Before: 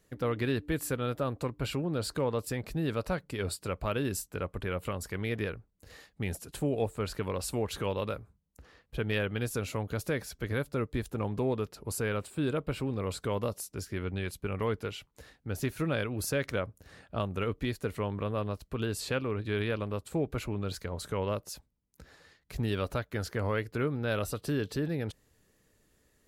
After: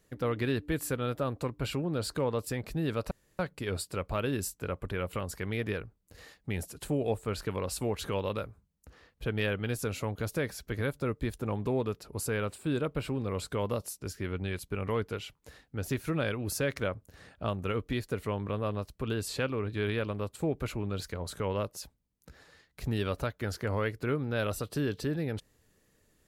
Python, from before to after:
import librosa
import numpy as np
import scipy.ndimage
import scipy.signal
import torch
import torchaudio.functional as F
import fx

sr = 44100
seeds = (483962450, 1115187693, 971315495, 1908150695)

y = fx.edit(x, sr, fx.insert_room_tone(at_s=3.11, length_s=0.28), tone=tone)